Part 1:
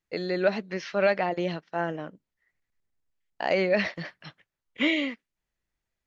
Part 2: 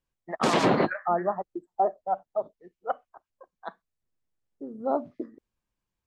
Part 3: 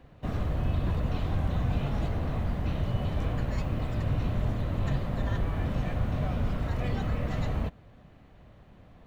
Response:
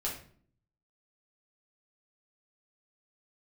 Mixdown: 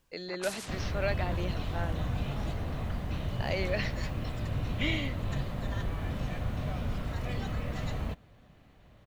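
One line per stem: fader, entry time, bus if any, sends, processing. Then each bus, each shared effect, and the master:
-10.0 dB, 0.00 s, no send, high shelf 3500 Hz +11.5 dB
-9.5 dB, 0.00 s, no send, spectral compressor 10:1; auto duck -11 dB, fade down 0.85 s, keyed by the first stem
-4.5 dB, 0.45 s, no send, high shelf 2500 Hz +8 dB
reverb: off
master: dry

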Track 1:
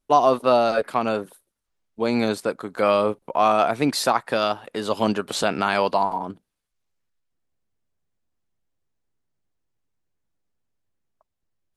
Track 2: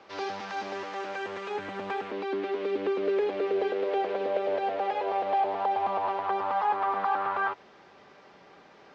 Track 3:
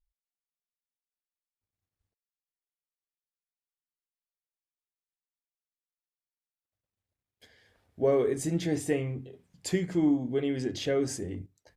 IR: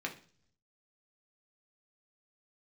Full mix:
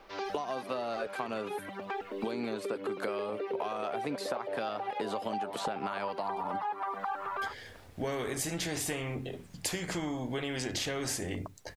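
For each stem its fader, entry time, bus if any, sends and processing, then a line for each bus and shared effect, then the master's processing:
-10.5 dB, 0.25 s, no send, three-band squash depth 100%
-2.0 dB, 0.00 s, no send, reverb removal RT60 1.8 s
+1.5 dB, 0.00 s, no send, spectral compressor 2:1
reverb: off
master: compressor, threshold -31 dBFS, peak gain reduction 8.5 dB

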